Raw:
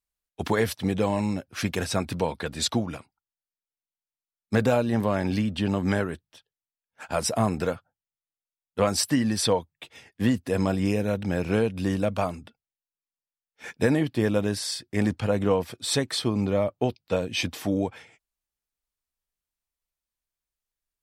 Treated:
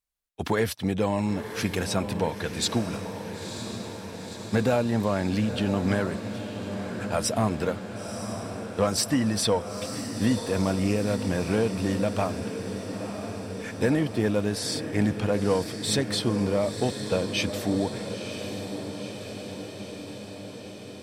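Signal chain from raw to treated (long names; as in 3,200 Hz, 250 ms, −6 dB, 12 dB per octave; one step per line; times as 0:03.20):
soft clipping −13 dBFS, distortion −22 dB
feedback delay with all-pass diffusion 972 ms, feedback 70%, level −9 dB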